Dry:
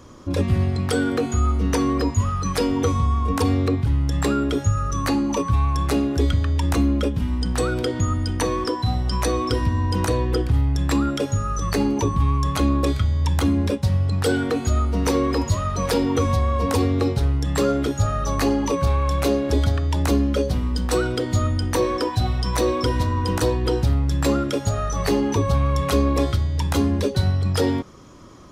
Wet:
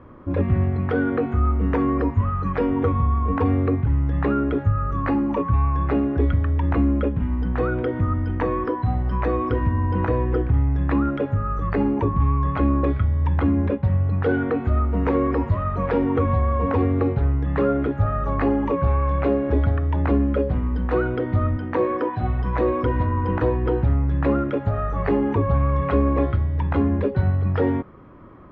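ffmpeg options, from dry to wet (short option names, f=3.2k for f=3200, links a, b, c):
-filter_complex "[0:a]asettb=1/sr,asplit=3[a][b][c];[a]atrim=end=21.564[d];[b]atrim=start=21.56:end=22.23,asetpts=PTS-STARTPTS,afade=t=in:d=0.004:c=qsin,afade=t=out:st=0.666:d=0.004:c=qsin,highpass=140[e];[c]atrim=start=22.226[f];[d][e]acrossfade=d=0.004:c1=hsin:c2=qsin[g];[g][f]acrossfade=d=0.004:c1=qsin:c2=hsin,lowpass=f=2.1k:w=0.5412,lowpass=f=2.1k:w=1.3066"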